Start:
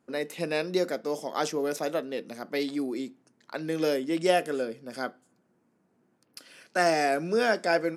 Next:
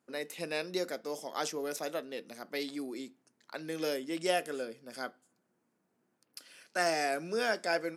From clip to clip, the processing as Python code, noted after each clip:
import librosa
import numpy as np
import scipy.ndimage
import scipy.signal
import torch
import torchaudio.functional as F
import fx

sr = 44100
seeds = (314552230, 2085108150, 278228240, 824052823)

y = fx.tilt_eq(x, sr, slope=1.5)
y = y * 10.0 ** (-6.0 / 20.0)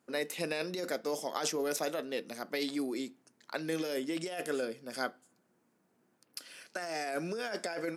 y = fx.over_compress(x, sr, threshold_db=-36.0, ratio=-1.0)
y = y * 10.0 ** (2.0 / 20.0)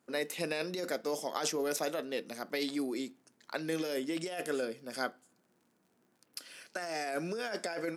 y = fx.dmg_crackle(x, sr, seeds[0], per_s=50.0, level_db=-57.0)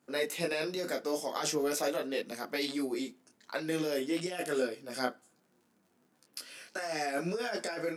y = fx.detune_double(x, sr, cents=15)
y = y * 10.0 ** (5.5 / 20.0)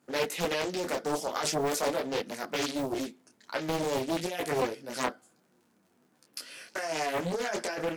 y = fx.doppler_dist(x, sr, depth_ms=0.82)
y = y * 10.0 ** (3.0 / 20.0)